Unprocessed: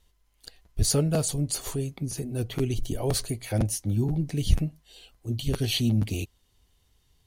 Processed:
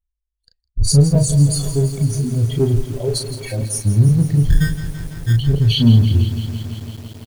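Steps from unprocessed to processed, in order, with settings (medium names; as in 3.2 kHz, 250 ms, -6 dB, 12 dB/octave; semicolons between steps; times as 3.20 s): spectral contrast enhancement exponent 2; gate -40 dBFS, range -28 dB; 2.81–3.76 s: high-pass 420 Hz 6 dB/octave; harmonic-percussive split harmonic +8 dB; in parallel at -7 dB: hard clipper -19 dBFS, distortion -9 dB; 4.50–5.33 s: on the sum: sample-rate reducer 1.7 kHz, jitter 0%; doubling 35 ms -6 dB; feedback echo behind a high-pass 160 ms, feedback 76%, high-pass 3.6 kHz, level -21 dB; on a send at -23 dB: reverberation RT60 0.30 s, pre-delay 3 ms; on the sum: bit-crushed delay 167 ms, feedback 80%, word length 6-bit, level -12 dB; trim +2.5 dB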